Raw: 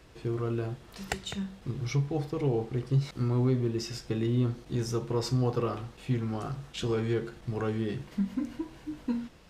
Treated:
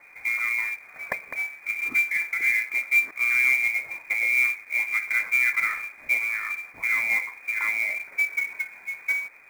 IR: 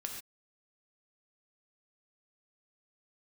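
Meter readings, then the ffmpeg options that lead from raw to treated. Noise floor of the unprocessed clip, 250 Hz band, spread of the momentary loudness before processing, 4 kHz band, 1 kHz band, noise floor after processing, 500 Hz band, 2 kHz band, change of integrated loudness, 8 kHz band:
-53 dBFS, under -20 dB, 9 LU, -3.5 dB, +1.5 dB, -49 dBFS, under -15 dB, +26.0 dB, +8.0 dB, +4.5 dB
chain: -af "lowpass=f=2.1k:t=q:w=0.5098,lowpass=f=2.1k:t=q:w=0.6013,lowpass=f=2.1k:t=q:w=0.9,lowpass=f=2.1k:t=q:w=2.563,afreqshift=-2500,acrusher=bits=4:mode=log:mix=0:aa=0.000001,volume=4.5dB"

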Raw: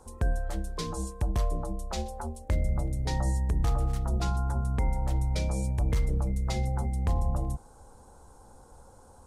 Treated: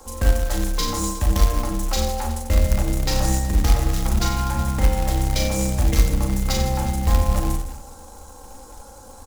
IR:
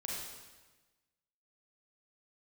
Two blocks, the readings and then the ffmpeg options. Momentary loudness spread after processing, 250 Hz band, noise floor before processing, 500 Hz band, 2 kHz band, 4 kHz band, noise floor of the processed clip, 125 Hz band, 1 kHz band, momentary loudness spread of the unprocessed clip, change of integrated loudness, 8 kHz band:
5 LU, +10.0 dB, -54 dBFS, +9.5 dB, +12.0 dB, +15.0 dB, -42 dBFS, +6.5 dB, +10.0 dB, 7 LU, +8.5 dB, +15.5 dB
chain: -filter_complex "[0:a]acrossover=split=200[a][b];[b]aeval=exprs='clip(val(0),-1,0.0112)':c=same[c];[a][c]amix=inputs=2:normalize=0,equalizer=f=8.9k:w=3.7:g=-11,bandreject=f=60:t=h:w=6,bandreject=f=120:t=h:w=6,bandreject=f=180:t=h:w=6,bandreject=f=240:t=h:w=6,aecho=1:1:3.7:0.5,aecho=1:1:40|92|159.6|247.5|361.7:0.631|0.398|0.251|0.158|0.1,asplit=2[d][e];[e]acrusher=bits=2:mode=log:mix=0:aa=0.000001,volume=-8.5dB[f];[d][f]amix=inputs=2:normalize=0,acrossover=split=470[g][h];[h]acompressor=threshold=-29dB:ratio=6[i];[g][i]amix=inputs=2:normalize=0,highshelf=f=3.3k:g=11,volume=4dB"

